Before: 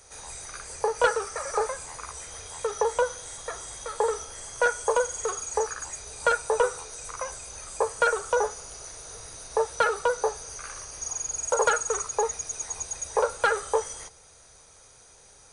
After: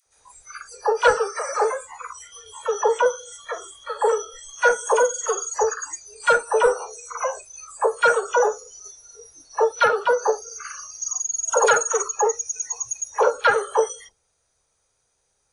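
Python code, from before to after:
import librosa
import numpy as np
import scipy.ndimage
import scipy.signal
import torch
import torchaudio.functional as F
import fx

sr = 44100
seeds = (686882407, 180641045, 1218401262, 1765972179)

y = fx.dynamic_eq(x, sr, hz=720.0, q=1.1, threshold_db=-46.0, ratio=4.0, max_db=6, at=(6.66, 7.35))
y = fx.noise_reduce_blind(y, sr, reduce_db=23)
y = fx.dispersion(y, sr, late='lows', ms=62.0, hz=650.0)
y = y * 10.0 ** (6.0 / 20.0)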